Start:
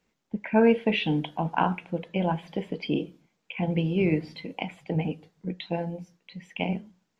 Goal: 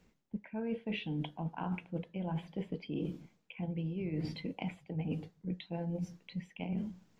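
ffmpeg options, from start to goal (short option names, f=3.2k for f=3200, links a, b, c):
-af "lowshelf=f=270:g=10.5,areverse,acompressor=threshold=-38dB:ratio=12,areverse,volume=3.5dB"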